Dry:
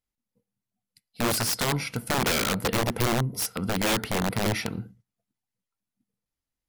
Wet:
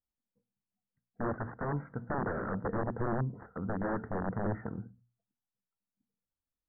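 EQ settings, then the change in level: steep low-pass 1.8 kHz 96 dB/octave; distance through air 450 m; hum notches 60/120/180/240 Hz; -5.5 dB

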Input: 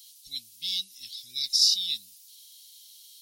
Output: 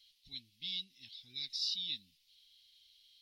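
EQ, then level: distance through air 380 m; +1.0 dB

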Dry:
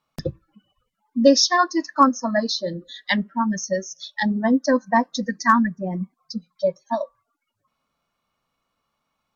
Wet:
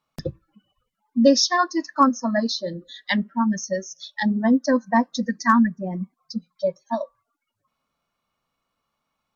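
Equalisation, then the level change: dynamic bell 230 Hz, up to +5 dB, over -34 dBFS, Q 4.9; -2.0 dB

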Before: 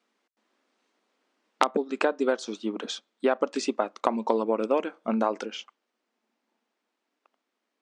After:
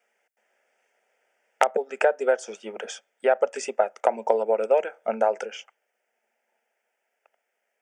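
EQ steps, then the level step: high-pass 370 Hz 12 dB/octave; static phaser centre 1.1 kHz, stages 6; dynamic bell 2.4 kHz, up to -4 dB, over -48 dBFS, Q 1; +7.5 dB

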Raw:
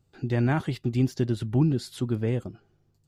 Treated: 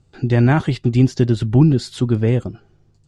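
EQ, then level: low-pass 8.8 kHz 24 dB/octave; bass shelf 68 Hz +6.5 dB; +9.0 dB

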